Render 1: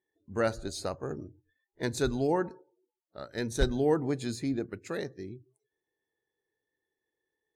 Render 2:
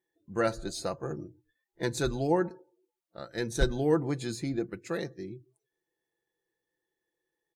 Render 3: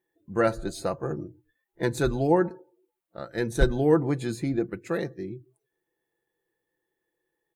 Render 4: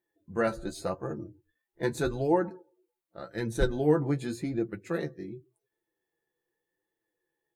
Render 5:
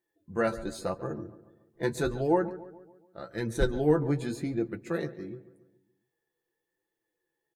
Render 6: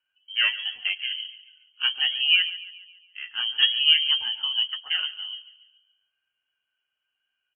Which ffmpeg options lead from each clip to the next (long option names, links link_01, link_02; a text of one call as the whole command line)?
ffmpeg -i in.wav -af "aecho=1:1:5.9:0.5" out.wav
ffmpeg -i in.wav -af "equalizer=frequency=5400:width_type=o:width=1.4:gain=-9,volume=5dB" out.wav
ffmpeg -i in.wav -af "flanger=delay=9:depth=5.3:regen=29:speed=0.86:shape=sinusoidal" out.wav
ffmpeg -i in.wav -filter_complex "[0:a]asplit=2[link_01][link_02];[link_02]adelay=141,lowpass=frequency=2200:poles=1,volume=-16dB,asplit=2[link_03][link_04];[link_04]adelay=141,lowpass=frequency=2200:poles=1,volume=0.52,asplit=2[link_05][link_06];[link_06]adelay=141,lowpass=frequency=2200:poles=1,volume=0.52,asplit=2[link_07][link_08];[link_08]adelay=141,lowpass=frequency=2200:poles=1,volume=0.52,asplit=2[link_09][link_10];[link_10]adelay=141,lowpass=frequency=2200:poles=1,volume=0.52[link_11];[link_01][link_03][link_05][link_07][link_09][link_11]amix=inputs=6:normalize=0" out.wav
ffmpeg -i in.wav -af "lowpass=frequency=2800:width_type=q:width=0.5098,lowpass=frequency=2800:width_type=q:width=0.6013,lowpass=frequency=2800:width_type=q:width=0.9,lowpass=frequency=2800:width_type=q:width=2.563,afreqshift=-3300,volume=4.5dB" out.wav